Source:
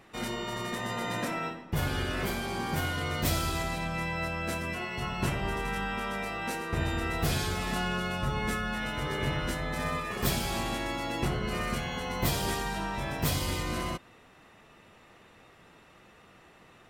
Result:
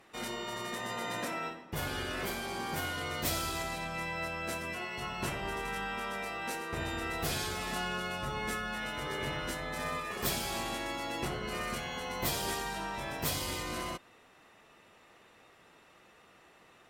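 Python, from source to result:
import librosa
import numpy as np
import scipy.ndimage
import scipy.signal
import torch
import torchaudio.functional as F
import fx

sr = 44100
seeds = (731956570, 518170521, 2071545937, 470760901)

y = fx.bass_treble(x, sr, bass_db=-7, treble_db=2)
y = fx.cheby_harmonics(y, sr, harmonics=(8,), levels_db=(-36,), full_scale_db=-15.0)
y = y * librosa.db_to_amplitude(-3.0)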